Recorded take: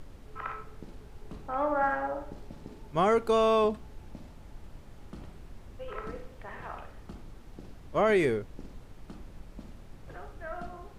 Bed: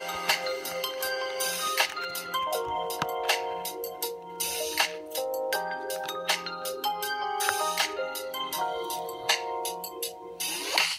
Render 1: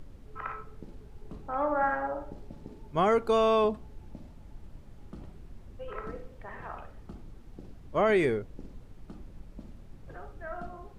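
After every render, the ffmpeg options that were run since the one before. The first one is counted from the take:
ffmpeg -i in.wav -af "afftdn=noise_reduction=6:noise_floor=-50" out.wav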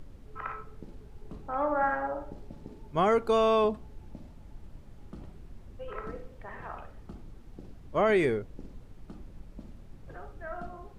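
ffmpeg -i in.wav -af anull out.wav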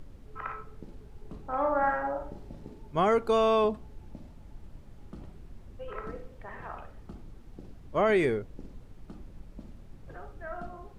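ffmpeg -i in.wav -filter_complex "[0:a]asettb=1/sr,asplit=3[link_01][link_02][link_03];[link_01]atrim=end=1.464[link_04];[link_02]atrim=start=1.46:end=2.7,asetpts=PTS-STARTPTS,afade=type=in:duration=0.004:curve=qsin,afade=type=out:start_time=1.236:duration=0.004:curve=qsin,asplit=2[link_05][link_06];[link_06]adelay=39,volume=-5.5dB[link_07];[link_05][link_07]amix=inputs=2:normalize=0,atrim=end_sample=54684[link_08];[link_03]atrim=start=2.696[link_09];[link_04][link_08]acrossfade=duration=0.004:curve1=hsin:curve2=qsin[link_10];[link_10][link_09]acrossfade=duration=0.004:curve1=qsin:curve2=hsin" out.wav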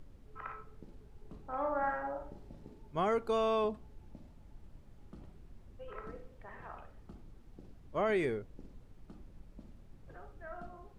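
ffmpeg -i in.wav -af "volume=-7dB" out.wav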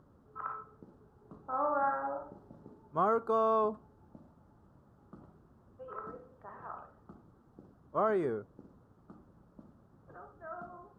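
ffmpeg -i in.wav -af "highpass=110,highshelf=frequency=1700:width_type=q:width=3:gain=-9.5" out.wav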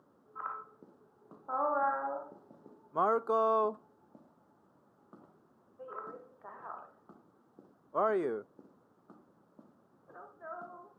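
ffmpeg -i in.wav -af "highpass=250" out.wav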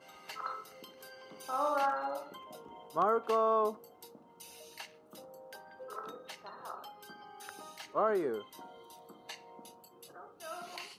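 ffmpeg -i in.wav -i bed.wav -filter_complex "[1:a]volume=-21.5dB[link_01];[0:a][link_01]amix=inputs=2:normalize=0" out.wav

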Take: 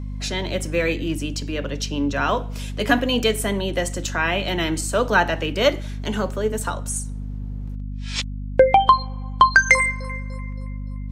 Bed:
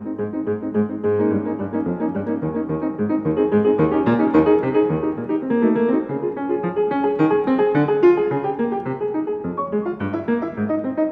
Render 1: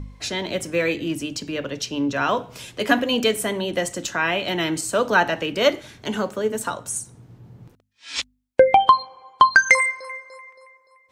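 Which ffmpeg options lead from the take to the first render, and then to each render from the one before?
ffmpeg -i in.wav -af "bandreject=frequency=50:width_type=h:width=4,bandreject=frequency=100:width_type=h:width=4,bandreject=frequency=150:width_type=h:width=4,bandreject=frequency=200:width_type=h:width=4,bandreject=frequency=250:width_type=h:width=4" out.wav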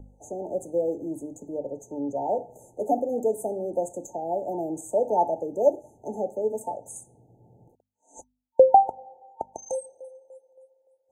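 ffmpeg -i in.wav -filter_complex "[0:a]afftfilt=real='re*(1-between(b*sr/4096,910,6100))':imag='im*(1-between(b*sr/4096,910,6100))':win_size=4096:overlap=0.75,acrossover=split=380 2500:gain=0.224 1 0.224[link_01][link_02][link_03];[link_01][link_02][link_03]amix=inputs=3:normalize=0" out.wav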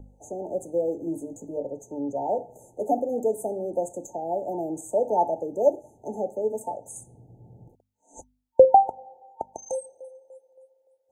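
ffmpeg -i in.wav -filter_complex "[0:a]asettb=1/sr,asplit=3[link_01][link_02][link_03];[link_01]atrim=end=1.054[link_04];[link_02]atrim=start=1.05:end=1.66,asetpts=PTS-STARTPTS,afade=type=in:duration=0.004:curve=qsin,afade=type=out:start_time=0.606:duration=0.004:curve=qsin,asplit=2[link_05][link_06];[link_06]adelay=18,volume=-4.5dB[link_07];[link_05][link_07]amix=inputs=2:normalize=0,atrim=end_sample=26901[link_08];[link_03]atrim=start=1.656[link_09];[link_04][link_08]acrossfade=duration=0.004:curve1=hsin:curve2=qsin[link_10];[link_10][link_09]acrossfade=duration=0.004:curve1=qsin:curve2=hsin,asettb=1/sr,asplit=3[link_11][link_12][link_13];[link_11]atrim=end=6.974[link_14];[link_12]atrim=start=6.97:end=8.65,asetpts=PTS-STARTPTS,afade=type=in:duration=0.004:curve=qsin,afade=type=out:start_time=1.676:duration=0.004:curve=qsin,lowshelf=frequency=220:gain=10[link_15];[link_13]atrim=start=8.646[link_16];[link_14][link_15]acrossfade=duration=0.004:curve1=hsin:curve2=qsin[link_17];[link_17][link_16]acrossfade=duration=0.004:curve1=qsin:curve2=hsin" out.wav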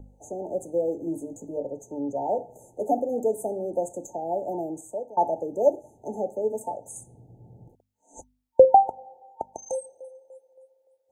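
ffmpeg -i in.wav -filter_complex "[0:a]asplit=2[link_01][link_02];[link_01]atrim=end=5.17,asetpts=PTS-STARTPTS,afade=type=out:start_time=4.56:duration=0.61:silence=0.0668344[link_03];[link_02]atrim=start=5.17,asetpts=PTS-STARTPTS,afade=type=in:duration=0.004:curve=hsin:silence=0.0668344[link_04];[link_03][link_04]concat=n=2:v=0:a=1" out.wav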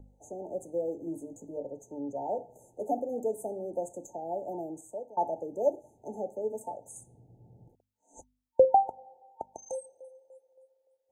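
ffmpeg -i in.wav -af "volume=-6.5dB" out.wav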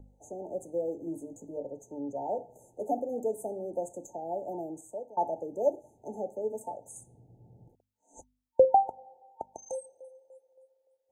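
ffmpeg -i in.wav -af anull out.wav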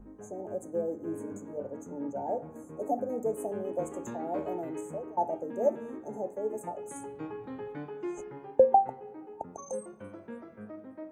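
ffmpeg -i in.wav -i bed.wav -filter_complex "[1:a]volume=-23dB[link_01];[0:a][link_01]amix=inputs=2:normalize=0" out.wav

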